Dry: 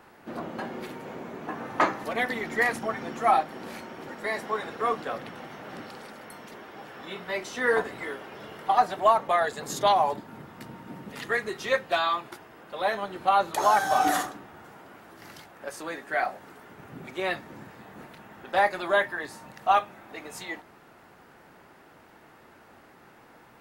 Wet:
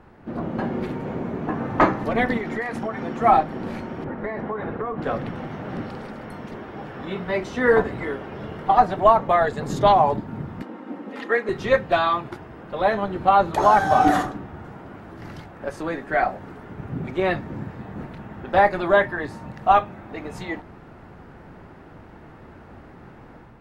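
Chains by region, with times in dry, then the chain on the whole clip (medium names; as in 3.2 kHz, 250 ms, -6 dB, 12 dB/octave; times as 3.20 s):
2.37–3.21 s: bass shelf 170 Hz -11 dB + compression 3:1, threshold -32 dBFS
4.04–5.02 s: low-pass 2 kHz + compression 10:1, threshold -31 dBFS
10.62–11.49 s: high-pass 280 Hz 24 dB/octave + treble shelf 4.3 kHz -8 dB + comb 3.8 ms, depth 42%
whole clip: RIAA curve playback; level rider gain up to 5.5 dB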